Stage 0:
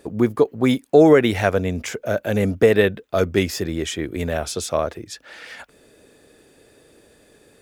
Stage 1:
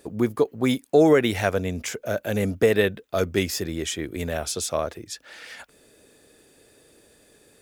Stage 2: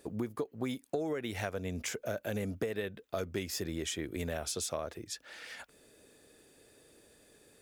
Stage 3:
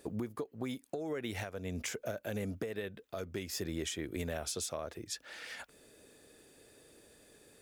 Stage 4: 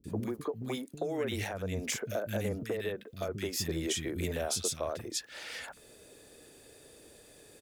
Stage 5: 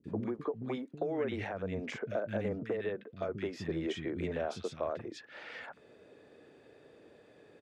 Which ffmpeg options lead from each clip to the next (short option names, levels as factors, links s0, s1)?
-af "highshelf=f=4100:g=7,volume=0.596"
-af "acompressor=threshold=0.0501:ratio=10,volume=0.531"
-af "alimiter=level_in=1.5:limit=0.0631:level=0:latency=1:release=418,volume=0.668,volume=1.12"
-filter_complex "[0:a]acrossover=split=240|1600[s0][s1][s2];[s2]adelay=40[s3];[s1]adelay=80[s4];[s0][s4][s3]amix=inputs=3:normalize=0,volume=1.88"
-af "highpass=120,lowpass=2100"